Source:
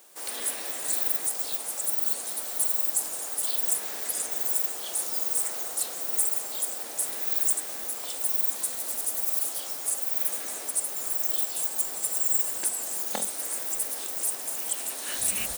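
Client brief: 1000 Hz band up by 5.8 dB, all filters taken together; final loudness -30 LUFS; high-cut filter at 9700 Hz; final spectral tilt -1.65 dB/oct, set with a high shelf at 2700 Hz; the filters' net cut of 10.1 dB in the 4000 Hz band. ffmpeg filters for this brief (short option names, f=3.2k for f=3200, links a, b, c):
-af "lowpass=9.7k,equalizer=f=1k:t=o:g=9,highshelf=f=2.7k:g=-6,equalizer=f=4k:t=o:g=-8.5,volume=7.5dB"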